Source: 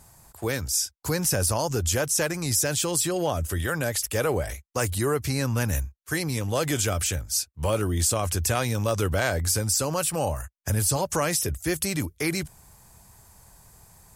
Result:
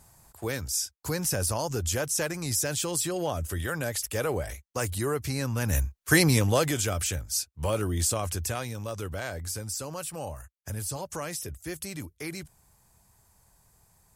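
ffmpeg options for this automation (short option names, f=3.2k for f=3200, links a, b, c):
-af "volume=8dB,afade=t=in:st=5.61:d=0.59:silence=0.251189,afade=t=out:st=6.2:d=0.54:silence=0.281838,afade=t=out:st=8.08:d=0.67:silence=0.446684"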